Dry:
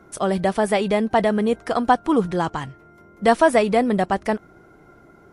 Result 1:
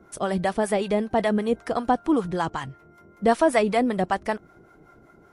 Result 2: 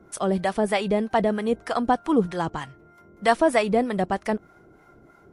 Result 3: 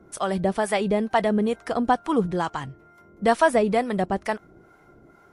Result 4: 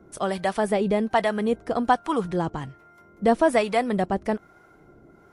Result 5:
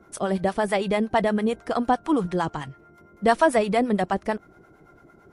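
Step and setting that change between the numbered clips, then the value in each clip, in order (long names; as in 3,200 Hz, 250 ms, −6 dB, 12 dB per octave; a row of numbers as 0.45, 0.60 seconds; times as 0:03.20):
two-band tremolo in antiphase, speed: 5.2, 3.2, 2.2, 1.2, 8.9 Hertz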